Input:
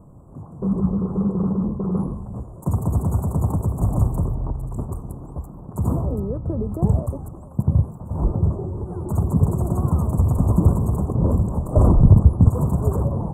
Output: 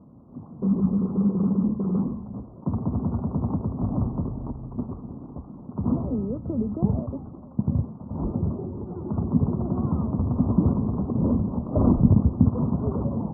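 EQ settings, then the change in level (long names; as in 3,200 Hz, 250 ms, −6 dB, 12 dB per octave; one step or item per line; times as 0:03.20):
high-pass filter 100 Hz 6 dB per octave
linear-phase brick-wall low-pass 1,500 Hz
parametric band 240 Hz +11.5 dB 0.61 octaves
−5.5 dB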